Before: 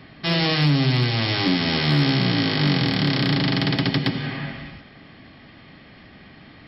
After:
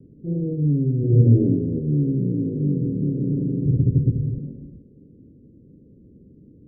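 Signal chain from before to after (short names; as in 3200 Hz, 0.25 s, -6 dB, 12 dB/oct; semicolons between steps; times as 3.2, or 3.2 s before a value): 0.98–1.39 reverb throw, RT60 1.2 s, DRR -9.5 dB; 3.65–4.38 resonant low shelf 140 Hz +14 dB, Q 1.5; steep low-pass 500 Hz 72 dB/oct; gain -1 dB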